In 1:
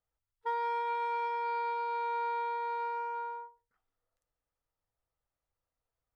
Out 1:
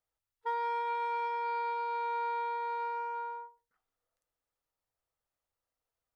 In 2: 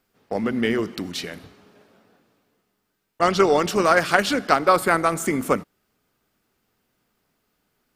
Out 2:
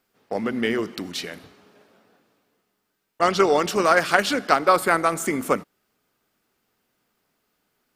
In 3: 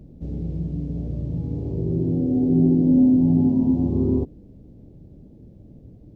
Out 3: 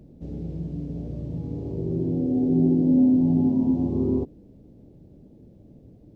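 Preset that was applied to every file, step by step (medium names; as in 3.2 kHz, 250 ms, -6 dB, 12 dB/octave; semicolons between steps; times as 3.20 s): bass shelf 160 Hz -8 dB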